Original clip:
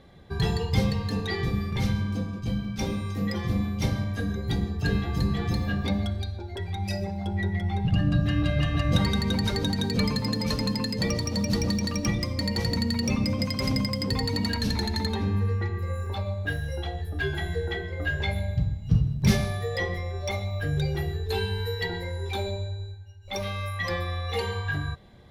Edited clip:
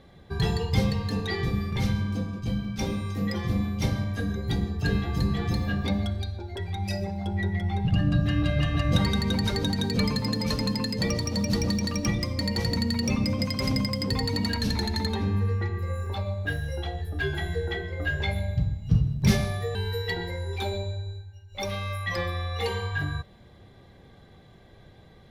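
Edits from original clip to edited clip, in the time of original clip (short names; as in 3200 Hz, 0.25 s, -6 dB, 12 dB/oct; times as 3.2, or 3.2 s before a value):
19.75–21.48 cut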